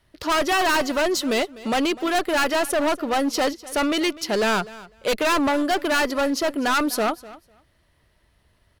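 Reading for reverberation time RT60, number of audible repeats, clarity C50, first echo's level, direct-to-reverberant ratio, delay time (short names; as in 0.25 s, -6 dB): none, 1, none, -19.0 dB, none, 0.25 s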